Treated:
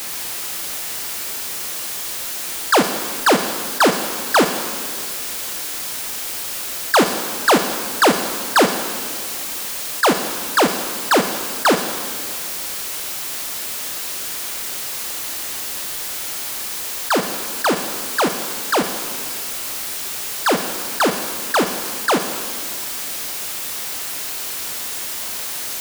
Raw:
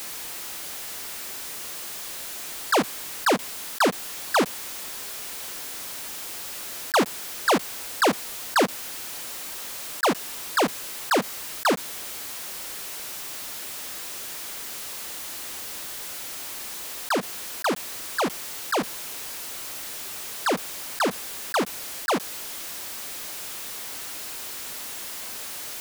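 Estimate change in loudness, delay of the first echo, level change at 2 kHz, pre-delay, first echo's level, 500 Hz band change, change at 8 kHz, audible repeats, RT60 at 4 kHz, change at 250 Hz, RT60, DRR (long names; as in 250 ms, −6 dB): +8.0 dB, no echo audible, +7.5 dB, 21 ms, no echo audible, +7.5 dB, +8.5 dB, no echo audible, 1.7 s, +7.0 dB, 2.1 s, 6.5 dB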